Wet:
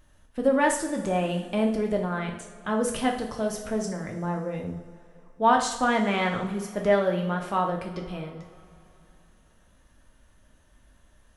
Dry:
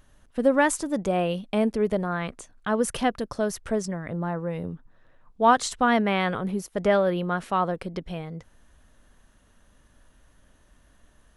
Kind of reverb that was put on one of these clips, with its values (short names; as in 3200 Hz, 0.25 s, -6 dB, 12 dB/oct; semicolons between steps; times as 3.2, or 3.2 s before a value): two-slope reverb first 0.56 s, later 3.1 s, from -18 dB, DRR 1 dB; gain -3.5 dB